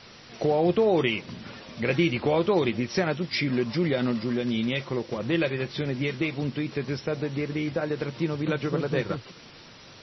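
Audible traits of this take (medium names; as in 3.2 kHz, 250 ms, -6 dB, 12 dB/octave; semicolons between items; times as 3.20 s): a quantiser's noise floor 8-bit, dither triangular; MP3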